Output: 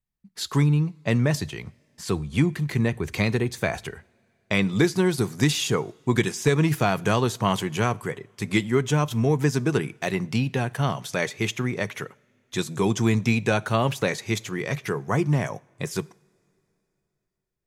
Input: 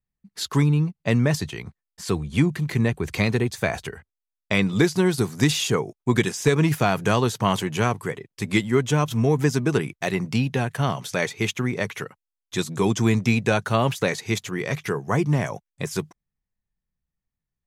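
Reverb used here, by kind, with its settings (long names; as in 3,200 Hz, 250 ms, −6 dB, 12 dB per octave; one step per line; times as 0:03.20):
coupled-rooms reverb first 0.52 s, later 3.3 s, from −20 dB, DRR 19.5 dB
level −1.5 dB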